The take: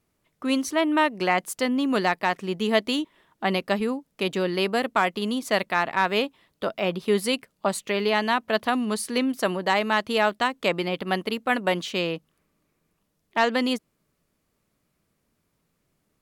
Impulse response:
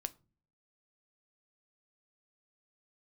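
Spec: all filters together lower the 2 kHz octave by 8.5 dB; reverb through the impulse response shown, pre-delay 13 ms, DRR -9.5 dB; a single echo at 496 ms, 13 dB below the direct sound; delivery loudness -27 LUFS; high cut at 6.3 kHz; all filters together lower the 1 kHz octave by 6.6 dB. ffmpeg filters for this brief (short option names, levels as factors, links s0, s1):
-filter_complex "[0:a]lowpass=6300,equalizer=f=1000:t=o:g=-7,equalizer=f=2000:t=o:g=-8.5,aecho=1:1:496:0.224,asplit=2[s0][s1];[1:a]atrim=start_sample=2205,adelay=13[s2];[s1][s2]afir=irnorm=-1:irlink=0,volume=3.55[s3];[s0][s3]amix=inputs=2:normalize=0,volume=0.355"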